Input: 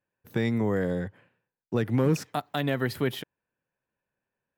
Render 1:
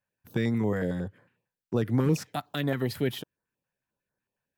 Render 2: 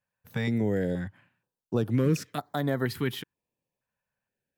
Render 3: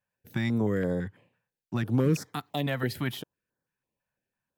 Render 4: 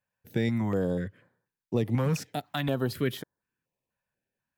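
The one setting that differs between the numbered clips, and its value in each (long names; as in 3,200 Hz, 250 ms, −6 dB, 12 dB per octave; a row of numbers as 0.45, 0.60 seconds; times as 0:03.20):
notch on a step sequencer, speed: 11, 2.1, 6, 4.1 Hertz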